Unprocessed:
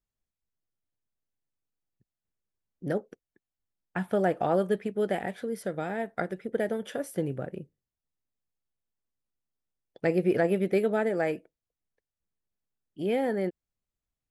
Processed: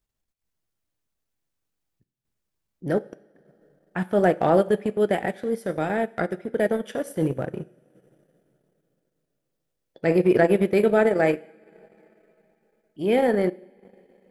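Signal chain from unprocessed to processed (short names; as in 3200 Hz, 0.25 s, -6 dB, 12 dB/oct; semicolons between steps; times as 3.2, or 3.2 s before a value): two-slope reverb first 0.75 s, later 3.3 s, from -19 dB, DRR 9.5 dB; transient shaper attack -6 dB, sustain -10 dB; gain +8 dB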